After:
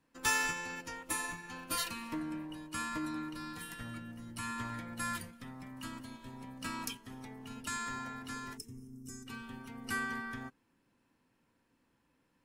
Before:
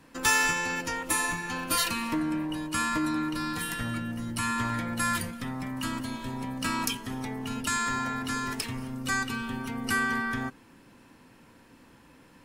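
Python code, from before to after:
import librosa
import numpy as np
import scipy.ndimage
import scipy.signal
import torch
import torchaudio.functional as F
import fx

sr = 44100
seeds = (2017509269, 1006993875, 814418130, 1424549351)

y = fx.spec_box(x, sr, start_s=8.57, length_s=0.7, low_hz=460.0, high_hz=5100.0, gain_db=-21)
y = fx.upward_expand(y, sr, threshold_db=-47.0, expansion=1.5)
y = y * 10.0 ** (-6.5 / 20.0)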